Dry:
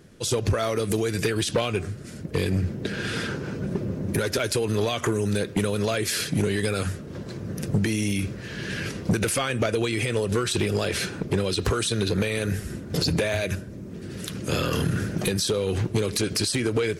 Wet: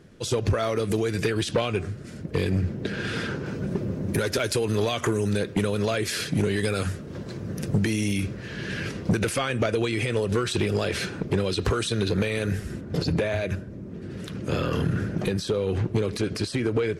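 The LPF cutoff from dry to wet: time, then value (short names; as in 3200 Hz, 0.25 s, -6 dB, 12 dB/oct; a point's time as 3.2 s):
LPF 6 dB/oct
4300 Hz
from 3.46 s 11000 Hz
from 5.29 s 5400 Hz
from 6.56 s 9200 Hz
from 8.27 s 4700 Hz
from 12.81 s 1900 Hz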